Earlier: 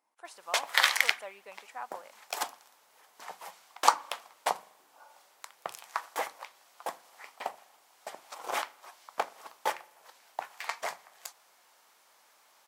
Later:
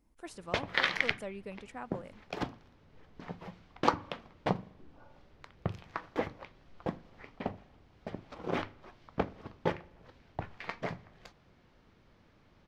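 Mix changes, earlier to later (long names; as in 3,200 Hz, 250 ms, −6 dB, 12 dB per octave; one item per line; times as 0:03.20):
background: add high-frequency loss of the air 260 metres
master: remove high-pass with resonance 830 Hz, resonance Q 1.8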